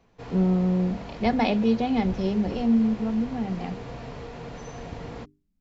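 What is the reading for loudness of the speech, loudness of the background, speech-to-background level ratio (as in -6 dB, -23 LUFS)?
-25.0 LUFS, -39.0 LUFS, 14.0 dB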